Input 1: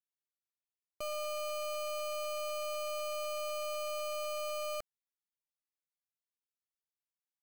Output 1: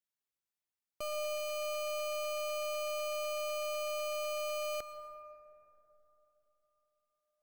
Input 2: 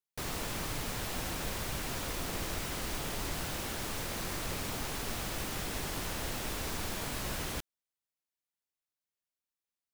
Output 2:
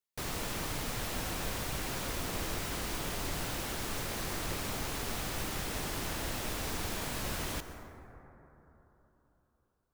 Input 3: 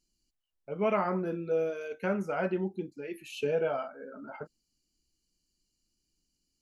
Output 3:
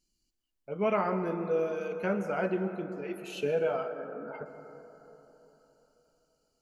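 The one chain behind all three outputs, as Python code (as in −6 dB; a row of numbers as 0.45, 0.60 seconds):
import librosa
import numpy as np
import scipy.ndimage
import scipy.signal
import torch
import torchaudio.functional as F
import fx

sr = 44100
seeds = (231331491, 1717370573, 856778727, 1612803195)

y = fx.rev_plate(x, sr, seeds[0], rt60_s=3.8, hf_ratio=0.25, predelay_ms=105, drr_db=9.0)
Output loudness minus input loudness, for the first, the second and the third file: +1.0, +0.5, 0.0 LU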